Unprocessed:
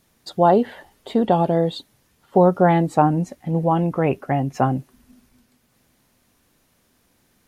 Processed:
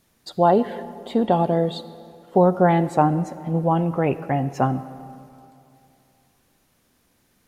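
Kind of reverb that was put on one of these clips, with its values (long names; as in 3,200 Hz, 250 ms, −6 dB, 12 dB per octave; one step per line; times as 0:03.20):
comb and all-pass reverb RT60 2.7 s, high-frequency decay 0.6×, pre-delay 20 ms, DRR 14.5 dB
level −1.5 dB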